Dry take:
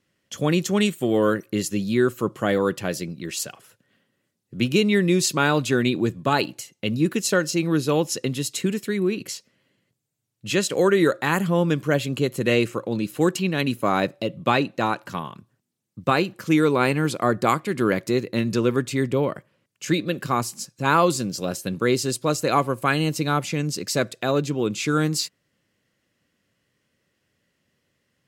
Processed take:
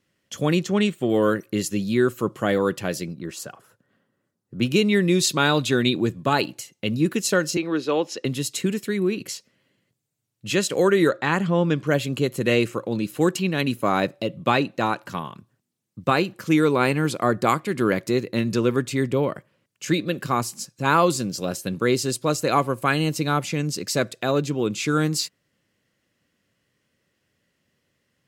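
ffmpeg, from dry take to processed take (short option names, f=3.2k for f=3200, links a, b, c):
-filter_complex "[0:a]asettb=1/sr,asplit=3[a][b][c];[a]atrim=end=0.594[d];[b]atrim=start=0.59:end=1.1,asetpts=PTS-STARTPTS,afade=t=in:d=0.004:c=qsin,afade=t=out:st=0.506:d=0.004:c=qsin,equalizer=f=13k:t=o:w=1.4:g=-13[e];[c]atrim=start=1.096[f];[d][e]acrossfade=d=0.004:c1=hsin:c2=qsin[g];[g][f]acrossfade=d=0.004:c1=qsin:c2=hsin,asplit=3[h][i][j];[h]afade=t=out:st=3.13:d=0.02[k];[i]highshelf=f=1.8k:t=q:w=1.5:g=-7,afade=t=in:st=3.13:d=0.02,afade=t=out:st=4.61:d=0.02[l];[j]afade=t=in:st=4.61:d=0.02[m];[k][l][m]amix=inputs=3:normalize=0,asettb=1/sr,asplit=3[n][o][p];[n]atrim=end=5.154[q];[o]atrim=start=5.15:end=5.95,asetpts=PTS-STARTPTS,afade=t=in:d=0.004:c=qsin,afade=t=out:st=0.796:d=0.004:c=qsin,equalizer=f=3.7k:w=4.7:g=7.5[r];[p]atrim=start=5.946[s];[q][r]acrossfade=d=0.004:c1=hsin:c2=qsin[t];[t][s]acrossfade=d=0.004:c1=qsin:c2=hsin,asettb=1/sr,asplit=3[u][v][w];[u]atrim=end=7.574[x];[v]atrim=start=7.57:end=8.25,asetpts=PTS-STARTPTS,afade=t=in:d=0.004:c=qsin,afade=t=out:st=0.676:d=0.004:c=qsin,acrossover=split=240 5300:gain=0.0891 1 0.112[y][z][aa];[y][z][aa]amix=inputs=3:normalize=0[ab];[w]atrim=start=8.246[ac];[x][ab]acrossfade=d=0.004:c1=hsin:c2=qsin[ad];[ad][ac]acrossfade=d=0.004:c1=qsin:c2=hsin,asettb=1/sr,asplit=3[ae][af][ag];[ae]atrim=end=11.094[ah];[af]atrim=start=11.09:end=11.87,asetpts=PTS-STARTPTS,afade=t=in:d=0.004:c=qsin,afade=t=out:st=0.776:d=0.004:c=qsin,lowpass=5.6k[ai];[ag]atrim=start=11.866[aj];[ah][ai]acrossfade=d=0.004:c1=hsin:c2=qsin[ak];[ak][aj]acrossfade=d=0.004:c1=qsin:c2=hsin"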